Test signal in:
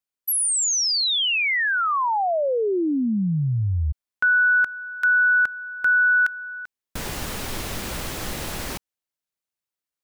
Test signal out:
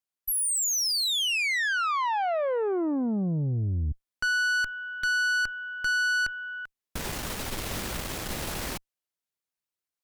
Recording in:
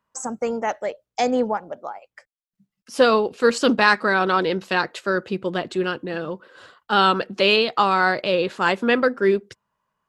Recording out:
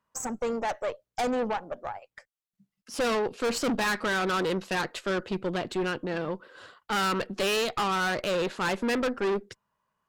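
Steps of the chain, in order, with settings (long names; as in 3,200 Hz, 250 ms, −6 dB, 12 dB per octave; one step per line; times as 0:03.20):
tube saturation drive 24 dB, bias 0.55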